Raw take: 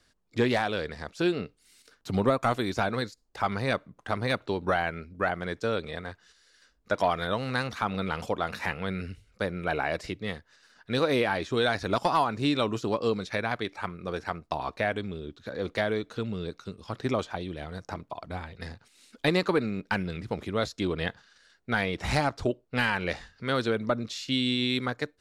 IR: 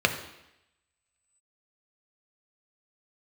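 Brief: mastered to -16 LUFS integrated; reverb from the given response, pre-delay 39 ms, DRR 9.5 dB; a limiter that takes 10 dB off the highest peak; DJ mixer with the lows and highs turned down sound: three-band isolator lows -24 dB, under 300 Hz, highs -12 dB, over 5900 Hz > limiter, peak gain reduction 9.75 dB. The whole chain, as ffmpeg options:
-filter_complex "[0:a]alimiter=limit=-23.5dB:level=0:latency=1,asplit=2[a][b];[1:a]atrim=start_sample=2205,adelay=39[c];[b][c]afir=irnorm=-1:irlink=0,volume=-24.5dB[d];[a][d]amix=inputs=2:normalize=0,acrossover=split=300 5900:gain=0.0631 1 0.251[e][f][g];[e][f][g]amix=inputs=3:normalize=0,volume=26dB,alimiter=limit=-5dB:level=0:latency=1"

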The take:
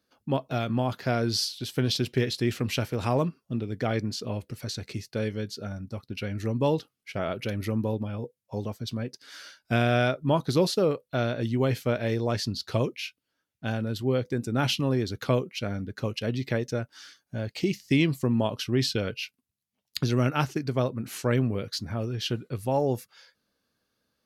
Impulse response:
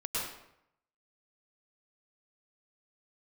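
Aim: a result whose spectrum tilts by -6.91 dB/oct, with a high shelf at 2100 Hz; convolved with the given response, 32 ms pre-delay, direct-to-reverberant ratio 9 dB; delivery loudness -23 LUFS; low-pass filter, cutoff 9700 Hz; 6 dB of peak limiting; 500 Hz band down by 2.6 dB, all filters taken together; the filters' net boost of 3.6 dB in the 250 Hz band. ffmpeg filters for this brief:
-filter_complex "[0:a]lowpass=9.7k,equalizer=f=250:t=o:g=5.5,equalizer=f=500:t=o:g=-4.5,highshelf=f=2.1k:g=-8,alimiter=limit=-15.5dB:level=0:latency=1,asplit=2[a][b];[1:a]atrim=start_sample=2205,adelay=32[c];[b][c]afir=irnorm=-1:irlink=0,volume=-14.5dB[d];[a][d]amix=inputs=2:normalize=0,volume=5.5dB"

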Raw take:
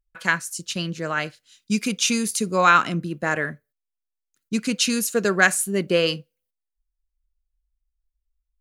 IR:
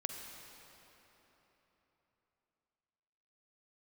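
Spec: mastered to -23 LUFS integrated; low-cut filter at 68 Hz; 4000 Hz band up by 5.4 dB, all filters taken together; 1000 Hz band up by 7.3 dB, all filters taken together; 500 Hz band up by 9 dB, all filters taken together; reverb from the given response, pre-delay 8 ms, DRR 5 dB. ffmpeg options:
-filter_complex "[0:a]highpass=68,equalizer=f=500:t=o:g=8.5,equalizer=f=1k:t=o:g=7.5,equalizer=f=4k:t=o:g=6.5,asplit=2[a][b];[1:a]atrim=start_sample=2205,adelay=8[c];[b][c]afir=irnorm=-1:irlink=0,volume=-5.5dB[d];[a][d]amix=inputs=2:normalize=0,volume=-7.5dB"

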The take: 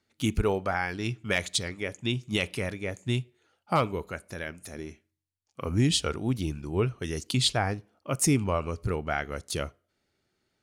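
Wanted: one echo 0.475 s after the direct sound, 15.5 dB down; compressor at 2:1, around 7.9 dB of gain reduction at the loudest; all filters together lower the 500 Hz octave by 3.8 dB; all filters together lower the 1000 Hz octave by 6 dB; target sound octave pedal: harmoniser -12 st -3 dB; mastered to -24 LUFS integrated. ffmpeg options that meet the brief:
-filter_complex "[0:a]equalizer=f=500:t=o:g=-3,equalizer=f=1k:t=o:g=-7.5,acompressor=threshold=-34dB:ratio=2,aecho=1:1:475:0.168,asplit=2[a][b];[b]asetrate=22050,aresample=44100,atempo=2,volume=-3dB[c];[a][c]amix=inputs=2:normalize=0,volume=11dB"

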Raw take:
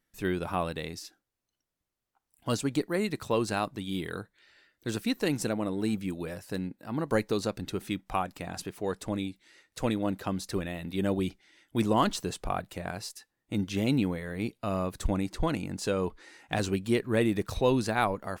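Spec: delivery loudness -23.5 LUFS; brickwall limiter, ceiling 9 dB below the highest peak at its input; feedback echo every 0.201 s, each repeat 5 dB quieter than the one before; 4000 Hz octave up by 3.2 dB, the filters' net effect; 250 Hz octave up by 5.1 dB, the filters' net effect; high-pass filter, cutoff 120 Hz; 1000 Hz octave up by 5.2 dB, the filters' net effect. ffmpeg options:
-af "highpass=120,equalizer=f=250:t=o:g=6.5,equalizer=f=1k:t=o:g=6,equalizer=f=4k:t=o:g=3.5,alimiter=limit=-15.5dB:level=0:latency=1,aecho=1:1:201|402|603|804|1005|1206|1407:0.562|0.315|0.176|0.0988|0.0553|0.031|0.0173,volume=4.5dB"

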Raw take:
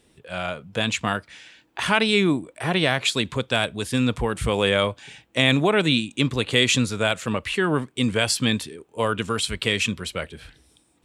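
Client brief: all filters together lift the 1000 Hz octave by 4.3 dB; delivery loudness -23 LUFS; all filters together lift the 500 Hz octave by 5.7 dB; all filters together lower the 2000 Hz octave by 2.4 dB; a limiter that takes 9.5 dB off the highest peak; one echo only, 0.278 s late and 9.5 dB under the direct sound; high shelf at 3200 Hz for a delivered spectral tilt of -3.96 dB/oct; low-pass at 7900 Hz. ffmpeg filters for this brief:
-af "lowpass=7.9k,equalizer=f=500:t=o:g=6,equalizer=f=1k:t=o:g=5,equalizer=f=2k:t=o:g=-8.5,highshelf=f=3.2k:g=8.5,alimiter=limit=-10.5dB:level=0:latency=1,aecho=1:1:278:0.335"

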